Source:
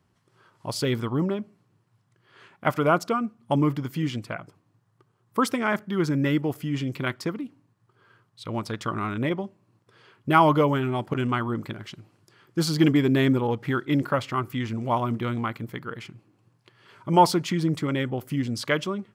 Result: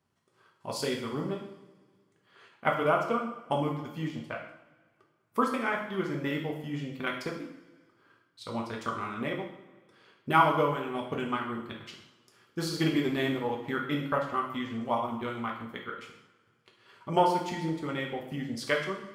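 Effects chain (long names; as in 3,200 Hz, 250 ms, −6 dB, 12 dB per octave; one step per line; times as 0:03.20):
low-shelf EQ 190 Hz −8.5 dB
transient designer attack +4 dB, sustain −11 dB
coupled-rooms reverb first 0.66 s, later 2 s, from −18 dB, DRR −1 dB
level −8 dB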